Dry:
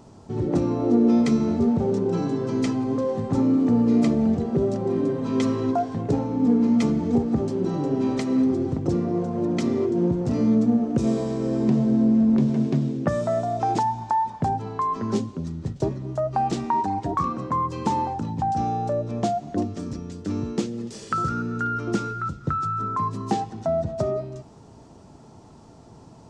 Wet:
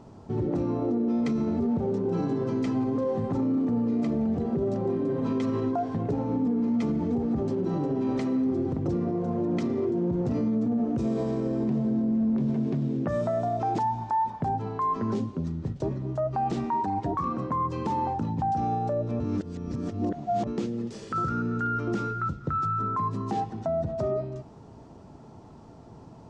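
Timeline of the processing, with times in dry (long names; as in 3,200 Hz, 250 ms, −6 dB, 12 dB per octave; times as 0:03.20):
0:19.20–0:20.47: reverse
whole clip: low-pass filter 2,500 Hz 6 dB per octave; brickwall limiter −20 dBFS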